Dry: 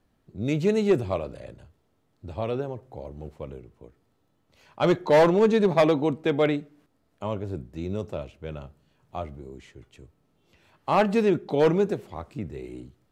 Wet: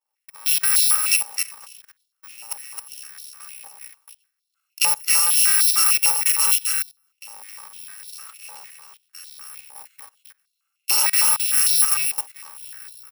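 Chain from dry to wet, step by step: FFT order left unsorted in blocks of 128 samples; in parallel at -1.5 dB: limiter -20.5 dBFS, peak gain reduction 7.5 dB; on the sum: level quantiser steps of 22 dB; expander -54 dBFS; on a send: echo 0.265 s -4 dB; on the sum: stepped high-pass 6.6 Hz 830–3900 Hz; gain +4.5 dB

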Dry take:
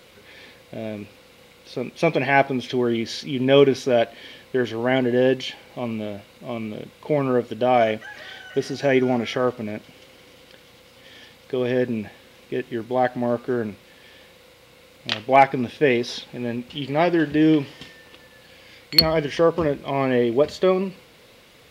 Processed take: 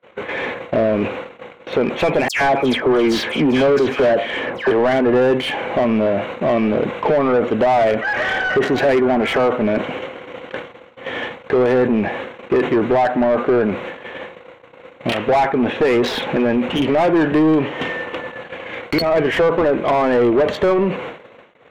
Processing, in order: Wiener smoothing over 9 samples; gate -49 dBFS, range -44 dB; compressor 5:1, threshold -31 dBFS, peak gain reduction 20 dB; 2.28–4.71 dispersion lows, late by 0.133 s, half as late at 2100 Hz; overdrive pedal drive 31 dB, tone 1100 Hz, clips at -11.5 dBFS; sustainer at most 110 dB/s; gain +6.5 dB

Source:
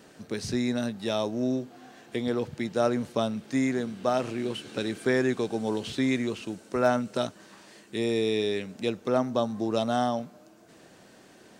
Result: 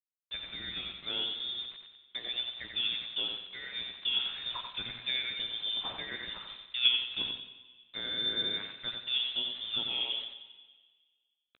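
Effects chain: recorder AGC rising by 7 dB/s; low-pass opened by the level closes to 710 Hz, open at -20.5 dBFS; in parallel at +0.5 dB: level quantiser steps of 20 dB; on the sum: expander -38 dBFS; steep high-pass 380 Hz 96 dB/oct; bit-crush 7-bit; doubler 16 ms -13.5 dB; feedback echo 90 ms, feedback 28%, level -5 dB; plate-style reverb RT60 1.7 s, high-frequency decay 0.85×, pre-delay 0.105 s, DRR 14 dB; inverted band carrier 4000 Hz; gain -8.5 dB

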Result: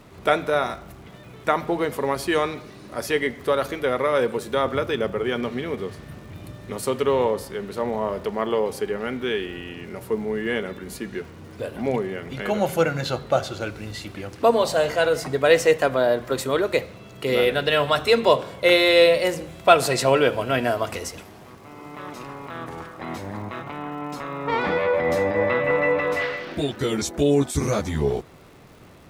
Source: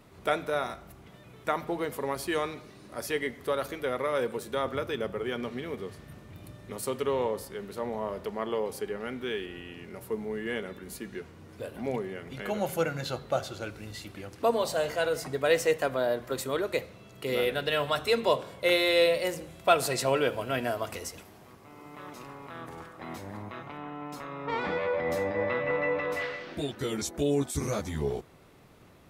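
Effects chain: high shelf 9500 Hz -8 dB; crackle 250/s -53 dBFS; gain +8 dB

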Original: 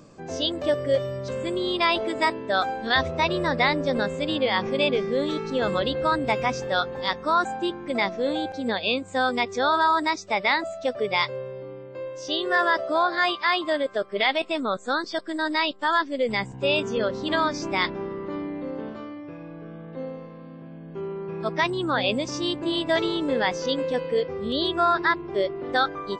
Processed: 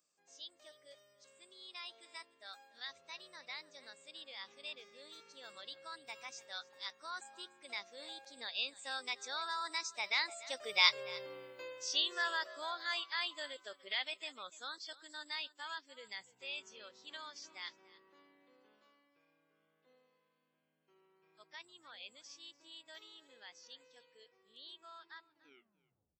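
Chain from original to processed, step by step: tape stop at the end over 1.03 s; Doppler pass-by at 11.23, 11 m/s, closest 3 m; in parallel at +2.5 dB: vocal rider within 4 dB 0.5 s; on the sum: differentiator; echo 0.292 s -19.5 dB; gain +6 dB

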